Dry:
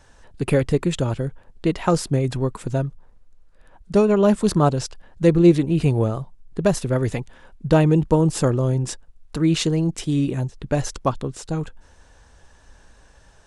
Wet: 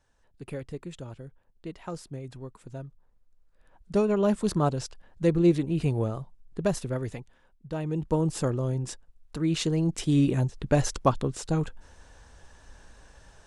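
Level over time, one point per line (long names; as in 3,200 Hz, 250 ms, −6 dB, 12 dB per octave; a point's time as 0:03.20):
0:02.61 −18 dB
0:03.93 −7.5 dB
0:06.78 −7.5 dB
0:07.69 −19 dB
0:08.15 −8 dB
0:09.47 −8 dB
0:10.19 −1 dB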